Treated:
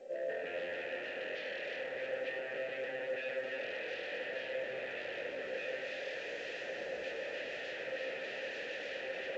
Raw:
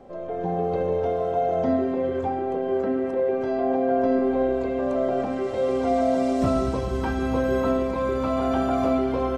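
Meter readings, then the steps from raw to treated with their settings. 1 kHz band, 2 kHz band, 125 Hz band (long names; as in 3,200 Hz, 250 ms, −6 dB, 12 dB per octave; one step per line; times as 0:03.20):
−24.0 dB, 0.0 dB, −31.5 dB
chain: high-shelf EQ 2,200 Hz +11.5 dB
wave folding −29 dBFS
formant filter e
on a send: delay that swaps between a low-pass and a high-pass 150 ms, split 1,500 Hz, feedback 55%, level −4.5 dB
on the sum: level +3.5 dB
A-law companding 128 kbit/s 16,000 Hz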